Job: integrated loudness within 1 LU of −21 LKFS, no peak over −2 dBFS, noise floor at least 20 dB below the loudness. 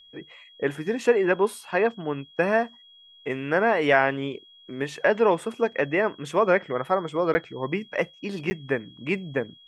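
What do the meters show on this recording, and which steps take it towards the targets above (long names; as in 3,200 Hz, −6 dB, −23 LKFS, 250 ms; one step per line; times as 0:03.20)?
number of dropouts 2; longest dropout 10 ms; interfering tone 3,300 Hz; level of the tone −50 dBFS; integrated loudness −25.0 LKFS; sample peak −5.0 dBFS; target loudness −21.0 LKFS
→ repair the gap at 0:07.34/0:08.50, 10 ms
notch filter 3,300 Hz, Q 30
level +4 dB
brickwall limiter −2 dBFS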